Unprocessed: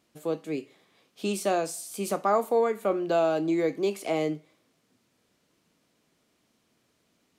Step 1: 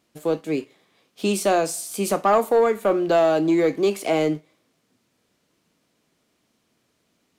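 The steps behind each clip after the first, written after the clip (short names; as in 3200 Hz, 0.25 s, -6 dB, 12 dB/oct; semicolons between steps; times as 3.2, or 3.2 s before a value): sample leveller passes 1; gain +3.5 dB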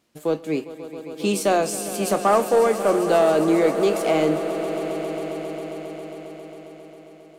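swelling echo 0.135 s, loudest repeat 5, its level -15 dB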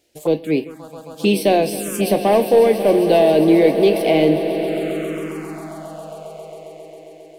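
envelope phaser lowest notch 190 Hz, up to 1300 Hz, full sweep at -21.5 dBFS; gain +7 dB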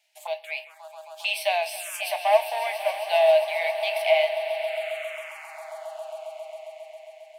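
rippled Chebyshev high-pass 610 Hz, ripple 9 dB; gain +1.5 dB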